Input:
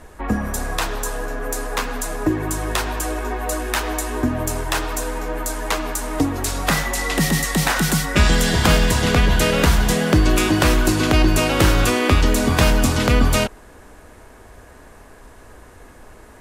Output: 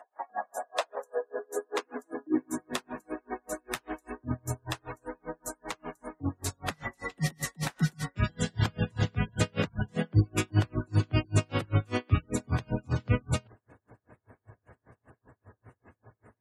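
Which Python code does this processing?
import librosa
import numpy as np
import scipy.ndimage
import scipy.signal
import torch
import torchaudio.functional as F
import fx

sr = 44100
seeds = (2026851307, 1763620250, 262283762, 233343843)

y = fx.spec_gate(x, sr, threshold_db=-25, keep='strong')
y = fx.filter_sweep_highpass(y, sr, from_hz=730.0, to_hz=110.0, start_s=0.42, end_s=4.03, q=5.5)
y = y * 10.0 ** (-39 * (0.5 - 0.5 * np.cos(2.0 * np.pi * 5.1 * np.arange(len(y)) / sr)) / 20.0)
y = F.gain(torch.from_numpy(y), -7.5).numpy()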